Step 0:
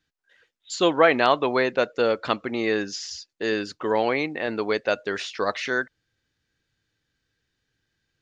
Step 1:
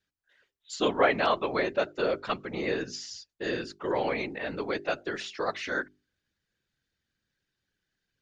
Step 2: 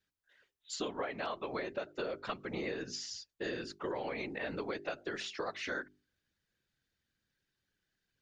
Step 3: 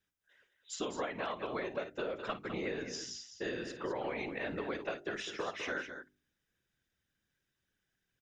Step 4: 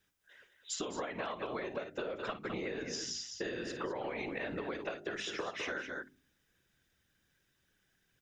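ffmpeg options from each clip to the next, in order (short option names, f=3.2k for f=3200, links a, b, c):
-af "afftfilt=real='hypot(re,im)*cos(2*PI*random(0))':imag='hypot(re,im)*sin(2*PI*random(1))':win_size=512:overlap=0.75,bandreject=f=50:t=h:w=6,bandreject=f=100:t=h:w=6,bandreject=f=150:t=h:w=6,bandreject=f=200:t=h:w=6,bandreject=f=250:t=h:w=6,bandreject=f=300:t=h:w=6,bandreject=f=350:t=h:w=6,bandreject=f=400:t=h:w=6"
-af "acompressor=threshold=-32dB:ratio=16,volume=-2dB"
-filter_complex "[0:a]bandreject=f=4.4k:w=5,asplit=2[a][b];[b]aecho=0:1:53|205:0.211|0.355[c];[a][c]amix=inputs=2:normalize=0"
-af "bandreject=f=53.28:t=h:w=4,bandreject=f=106.56:t=h:w=4,bandreject=f=159.84:t=h:w=4,bandreject=f=213.12:t=h:w=4,bandreject=f=266.4:t=h:w=4,acompressor=threshold=-44dB:ratio=6,volume=8dB"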